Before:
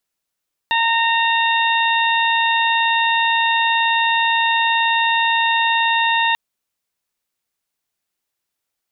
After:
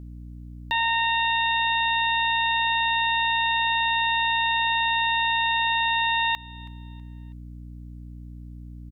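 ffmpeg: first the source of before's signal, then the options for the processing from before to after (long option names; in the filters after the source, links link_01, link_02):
-f lavfi -i "aevalsrc='0.133*sin(2*PI*919*t)+0.106*sin(2*PI*1838*t)+0.0841*sin(2*PI*2757*t)+0.075*sin(2*PI*3676*t)':duration=5.64:sample_rate=44100"
-af "aeval=exprs='val(0)+0.0126*(sin(2*PI*60*n/s)+sin(2*PI*2*60*n/s)/2+sin(2*PI*3*60*n/s)/3+sin(2*PI*4*60*n/s)/4+sin(2*PI*5*60*n/s)/5)':channel_layout=same,alimiter=limit=-16dB:level=0:latency=1:release=292,aecho=1:1:324|648|972:0.0794|0.0294|0.0109"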